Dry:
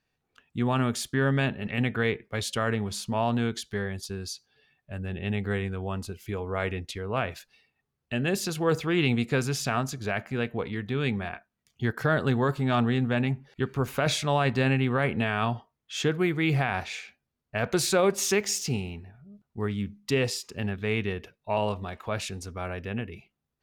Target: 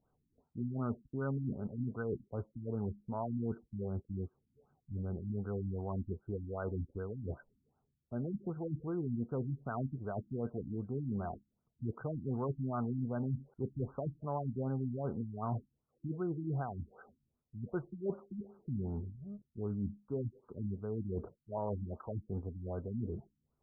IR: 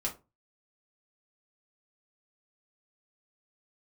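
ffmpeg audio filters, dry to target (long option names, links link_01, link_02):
-af "areverse,acompressor=threshold=-38dB:ratio=5,areverse,afftfilt=real='re*lt(b*sr/1024,300*pow(1600/300,0.5+0.5*sin(2*PI*2.6*pts/sr)))':imag='im*lt(b*sr/1024,300*pow(1600/300,0.5+0.5*sin(2*PI*2.6*pts/sr)))':win_size=1024:overlap=0.75,volume=3.5dB"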